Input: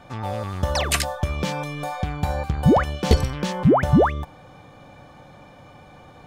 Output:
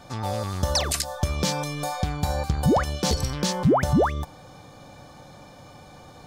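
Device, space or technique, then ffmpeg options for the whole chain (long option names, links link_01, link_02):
over-bright horn tweeter: -af "highshelf=frequency=3600:width_type=q:width=1.5:gain=7.5,alimiter=limit=-12dB:level=0:latency=1:release=203"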